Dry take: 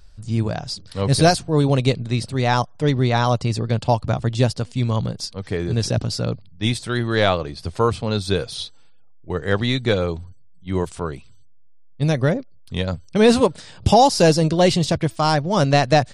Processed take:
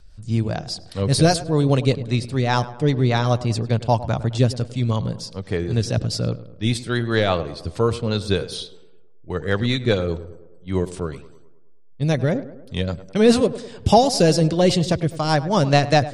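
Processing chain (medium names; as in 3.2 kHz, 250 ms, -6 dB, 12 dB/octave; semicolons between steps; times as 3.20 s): rotary cabinet horn 5 Hz; tape echo 103 ms, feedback 60%, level -14 dB, low-pass 1.7 kHz; trim +1 dB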